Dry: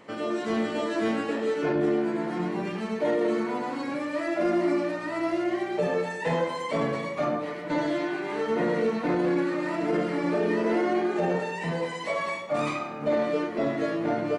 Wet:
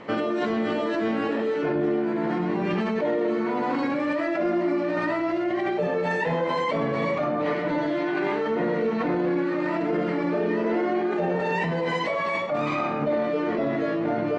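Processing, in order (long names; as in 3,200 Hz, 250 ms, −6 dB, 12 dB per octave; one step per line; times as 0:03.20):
in parallel at 0 dB: compressor whose output falls as the input rises −33 dBFS, ratio −0.5
on the sum: high-frequency loss of the air 150 metres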